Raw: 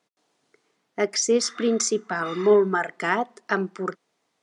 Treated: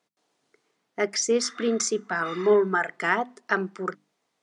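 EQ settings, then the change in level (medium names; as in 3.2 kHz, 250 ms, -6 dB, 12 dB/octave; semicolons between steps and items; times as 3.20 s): hum notches 50/100/150/200/250/300 Hz; dynamic bell 1.7 kHz, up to +4 dB, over -36 dBFS, Q 1.2; -2.5 dB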